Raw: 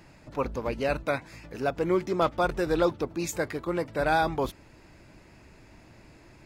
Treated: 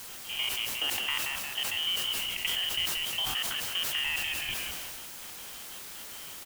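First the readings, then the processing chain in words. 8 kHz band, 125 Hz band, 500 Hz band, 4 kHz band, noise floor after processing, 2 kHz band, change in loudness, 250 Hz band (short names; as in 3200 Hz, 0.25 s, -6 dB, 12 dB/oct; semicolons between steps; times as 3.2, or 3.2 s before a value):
+9.0 dB, -15.5 dB, -22.5 dB, +16.5 dB, -44 dBFS, +1.0 dB, -1.5 dB, -21.0 dB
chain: stepped spectrum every 0.1 s; HPF 150 Hz 12 dB/oct; inverted band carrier 3400 Hz; step gate ".x.xxx.x." 184 bpm -24 dB; low shelf 490 Hz +8.5 dB; on a send: frequency-shifting echo 0.176 s, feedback 34%, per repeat -84 Hz, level -9.5 dB; on the sum: compressor 6:1, threshold -34 dBFS, peak gain reduction 12 dB; requantised 8-bit, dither triangular; sustainer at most 20 dB/s; gain +4.5 dB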